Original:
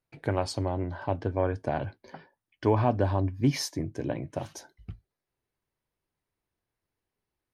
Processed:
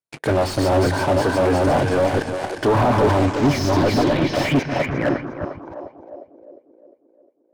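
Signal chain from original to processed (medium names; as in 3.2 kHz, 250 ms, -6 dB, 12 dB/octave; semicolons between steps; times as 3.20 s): chunks repeated in reverse 574 ms, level -2 dB; high-pass 240 Hz 6 dB/octave; waveshaping leveller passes 5; on a send: two-band feedback delay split 320 Hz, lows 141 ms, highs 354 ms, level -9 dB; on the sum: low-pass sweep 9.7 kHz -> 510 Hz, 3.02–6.53 s; slew-rate limiter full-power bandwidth 160 Hz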